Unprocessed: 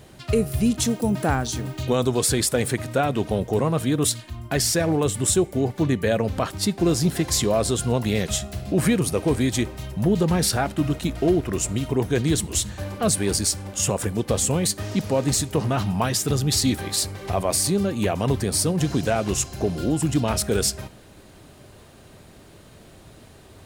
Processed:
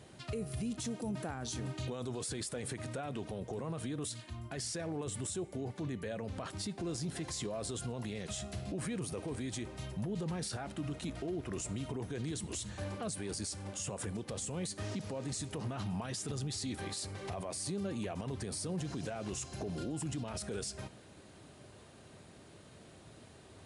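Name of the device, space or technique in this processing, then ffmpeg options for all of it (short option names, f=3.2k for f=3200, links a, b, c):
podcast mastering chain: -af "highpass=78,acompressor=threshold=-25dB:ratio=2.5,alimiter=limit=-23dB:level=0:latency=1:release=20,volume=-7dB" -ar 24000 -c:a libmp3lame -b:a 96k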